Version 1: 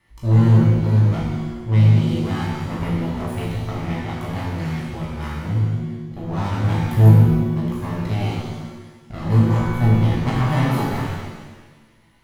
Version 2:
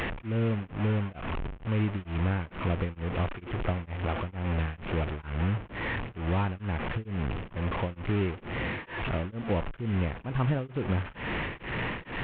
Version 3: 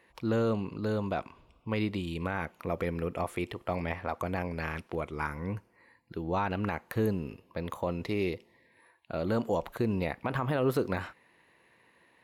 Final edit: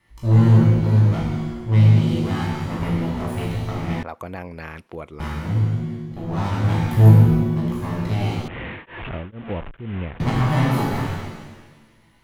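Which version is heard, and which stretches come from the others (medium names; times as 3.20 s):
1
4.03–5.20 s: from 3
8.48–10.20 s: from 2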